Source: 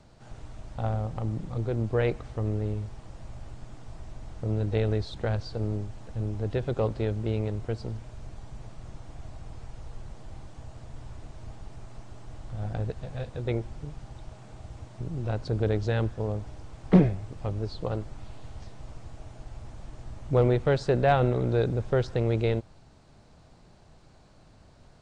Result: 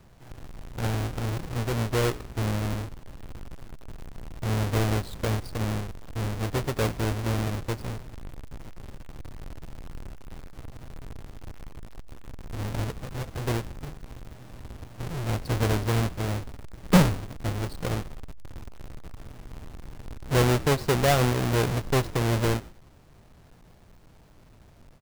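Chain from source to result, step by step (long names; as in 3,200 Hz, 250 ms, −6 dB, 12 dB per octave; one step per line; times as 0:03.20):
each half-wave held at its own peak
echo with shifted repeats 90 ms, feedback 32%, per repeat −51 Hz, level −20 dB
every ending faded ahead of time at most 290 dB per second
level −3.5 dB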